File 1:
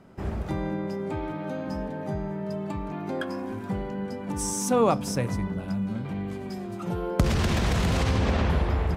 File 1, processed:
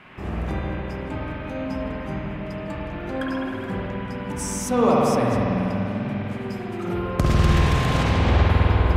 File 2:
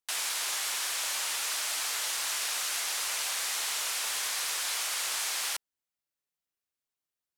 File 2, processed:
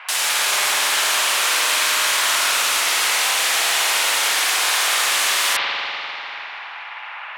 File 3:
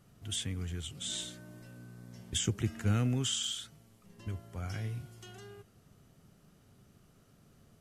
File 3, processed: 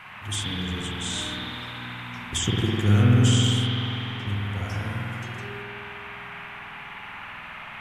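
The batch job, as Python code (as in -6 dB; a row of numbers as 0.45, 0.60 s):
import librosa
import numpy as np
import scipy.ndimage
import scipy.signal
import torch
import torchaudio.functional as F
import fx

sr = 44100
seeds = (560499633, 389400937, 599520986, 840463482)

y = fx.dmg_noise_band(x, sr, seeds[0], low_hz=740.0, high_hz=2700.0, level_db=-50.0)
y = fx.rev_spring(y, sr, rt60_s=3.2, pass_ms=(49,), chirp_ms=30, drr_db=-4.5)
y = librosa.util.normalize(y) * 10.0 ** (-6 / 20.0)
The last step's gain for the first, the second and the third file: -0.5, +10.5, +5.0 dB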